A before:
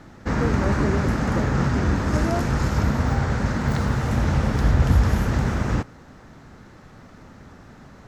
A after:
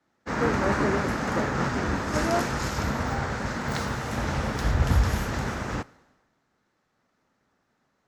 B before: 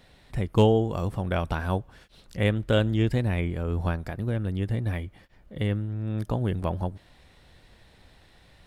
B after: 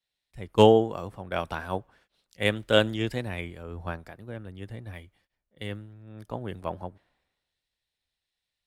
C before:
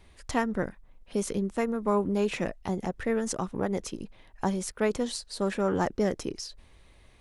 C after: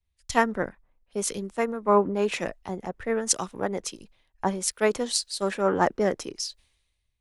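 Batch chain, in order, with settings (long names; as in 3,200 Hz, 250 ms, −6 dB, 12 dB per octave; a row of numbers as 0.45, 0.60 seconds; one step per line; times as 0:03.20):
low-shelf EQ 240 Hz −11.5 dB
multiband upward and downward expander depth 100%
loudness normalisation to −27 LKFS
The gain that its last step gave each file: +0.5, −1.5, +4.5 decibels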